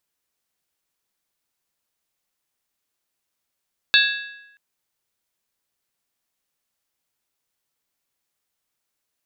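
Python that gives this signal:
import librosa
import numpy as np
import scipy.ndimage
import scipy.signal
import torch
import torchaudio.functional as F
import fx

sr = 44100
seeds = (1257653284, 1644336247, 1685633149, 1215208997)

y = fx.strike_skin(sr, length_s=0.63, level_db=-14.5, hz=1660.0, decay_s=0.95, tilt_db=1.0, modes=5)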